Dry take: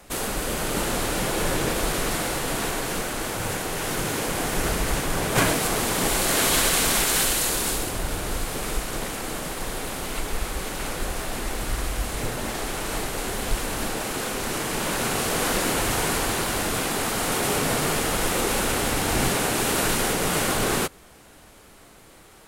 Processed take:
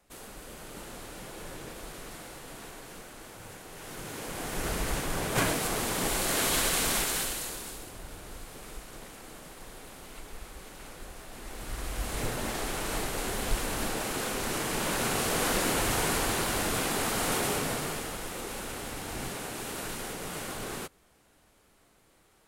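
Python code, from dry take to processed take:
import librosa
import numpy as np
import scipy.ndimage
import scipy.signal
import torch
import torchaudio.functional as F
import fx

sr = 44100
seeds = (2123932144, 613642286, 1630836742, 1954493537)

y = fx.gain(x, sr, db=fx.line((3.63, -18.0), (4.78, -6.5), (6.97, -6.5), (7.71, -16.0), (11.28, -16.0), (12.18, -4.0), (17.34, -4.0), (18.24, -14.0)))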